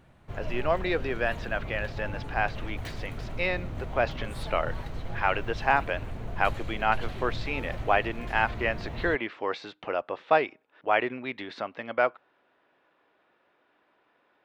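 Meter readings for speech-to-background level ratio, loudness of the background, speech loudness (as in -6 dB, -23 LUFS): 9.5 dB, -39.0 LUFS, -29.5 LUFS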